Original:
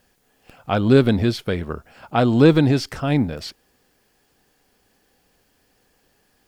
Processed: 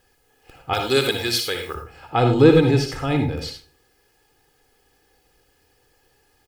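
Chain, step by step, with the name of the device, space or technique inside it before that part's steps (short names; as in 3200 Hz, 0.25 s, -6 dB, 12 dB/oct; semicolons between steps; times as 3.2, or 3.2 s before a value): 0.73–1.75 tilt +4.5 dB/oct; microphone above a desk (comb 2.4 ms, depth 64%; reverb RT60 0.35 s, pre-delay 55 ms, DRR 4.5 dB); gain -2 dB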